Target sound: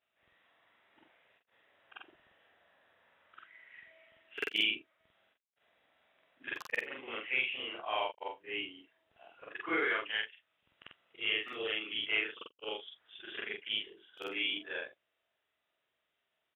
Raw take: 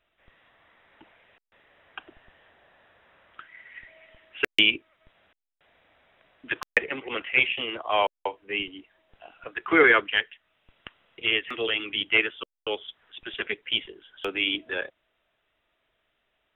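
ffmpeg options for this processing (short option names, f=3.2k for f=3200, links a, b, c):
-filter_complex "[0:a]afftfilt=real='re':imag='-im':win_size=4096:overlap=0.75,highpass=82,lowshelf=f=250:g=-5,acrossover=split=3000[a][b];[a]alimiter=limit=-18.5dB:level=0:latency=1:release=292[c];[b]asplit=2[d][e];[e]adelay=12,volume=-2.5dB[f];[d][f]amix=inputs=2:normalize=0[g];[c][g]amix=inputs=2:normalize=0,volume=-4.5dB"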